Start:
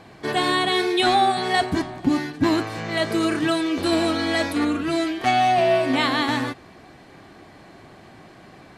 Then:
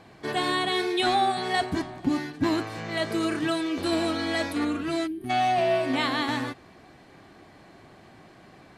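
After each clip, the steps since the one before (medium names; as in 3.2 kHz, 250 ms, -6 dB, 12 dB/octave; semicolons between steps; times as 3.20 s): time-frequency box 5.07–5.30 s, 410–8600 Hz -23 dB; trim -5 dB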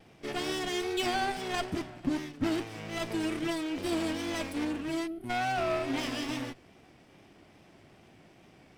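comb filter that takes the minimum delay 0.37 ms; vibrato 2.4 Hz 53 cents; trim -5 dB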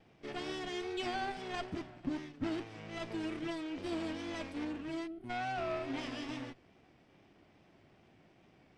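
distance through air 82 m; trim -6.5 dB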